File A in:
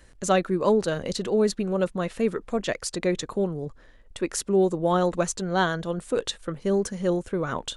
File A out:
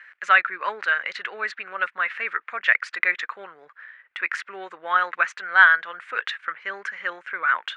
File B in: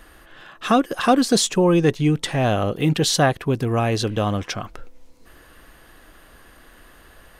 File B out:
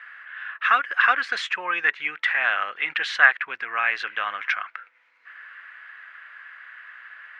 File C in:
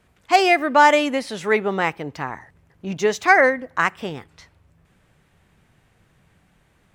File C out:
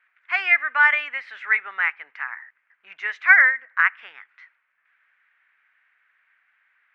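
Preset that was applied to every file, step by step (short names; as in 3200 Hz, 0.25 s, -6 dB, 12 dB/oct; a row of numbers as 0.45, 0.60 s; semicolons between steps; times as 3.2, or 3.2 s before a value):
Butterworth band-pass 1800 Hz, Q 1.9; normalise peaks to -1.5 dBFS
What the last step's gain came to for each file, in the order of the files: +17.0, +12.0, +4.5 dB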